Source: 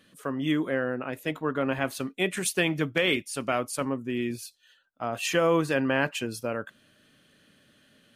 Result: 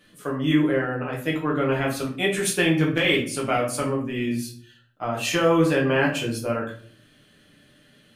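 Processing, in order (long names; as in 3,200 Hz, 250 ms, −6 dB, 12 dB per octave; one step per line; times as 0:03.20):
rectangular room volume 47 cubic metres, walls mixed, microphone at 0.84 metres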